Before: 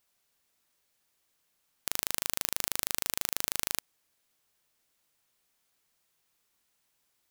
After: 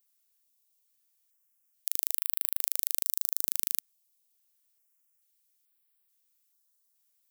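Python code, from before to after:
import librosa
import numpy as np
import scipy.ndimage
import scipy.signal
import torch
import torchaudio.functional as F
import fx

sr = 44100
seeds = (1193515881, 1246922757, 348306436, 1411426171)

y = fx.riaa(x, sr, side='recording')
y = fx.filter_held_notch(y, sr, hz=2.3, low_hz=240.0, high_hz=6300.0)
y = F.gain(torch.from_numpy(y), -13.0).numpy()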